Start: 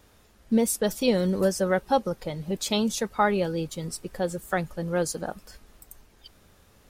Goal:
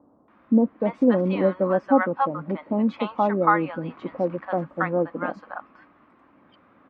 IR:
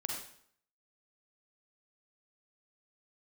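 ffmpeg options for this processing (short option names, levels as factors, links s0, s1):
-filter_complex "[0:a]asettb=1/sr,asplit=3[s0][s1][s2];[s0]atrim=end=3.624[s3];[s1]atrim=start=3.62:end=4.36,asetpts=PTS-STARTPTS,afade=t=in:d=0.004:c=qsin,afade=t=out:st=0.736:d=0.004:c=qsin,aeval=exprs='val(0)+0.5*0.00944*sgn(val(0))':c=same[s4];[s2]atrim=start=4.356[s5];[s3][s4]acrossfade=d=0.004:c1=hsin:c2=qsin[s6];[s6][s5]acrossfade=d=0.004:c1=qsin:c2=hsin,highpass=240,equalizer=f=280:t=q:w=4:g=9,equalizer=f=420:t=q:w=4:g=-9,equalizer=f=1100:t=q:w=4:g=8,equalizer=f=1700:t=q:w=4:g=-4,lowpass=f=2000:w=0.5412,lowpass=f=2000:w=1.3066,acrossover=split=830[s7][s8];[s8]adelay=280[s9];[s7][s9]amix=inputs=2:normalize=0,volume=2"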